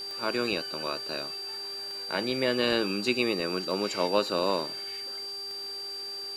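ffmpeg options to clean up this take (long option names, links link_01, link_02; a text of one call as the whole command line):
ffmpeg -i in.wav -af "adeclick=threshold=4,bandreject=frequency=396.2:width_type=h:width=4,bandreject=frequency=792.4:width_type=h:width=4,bandreject=frequency=1188.6:width_type=h:width=4,bandreject=frequency=1584.8:width_type=h:width=4,bandreject=frequency=4700:width=30,afwtdn=0.0028" out.wav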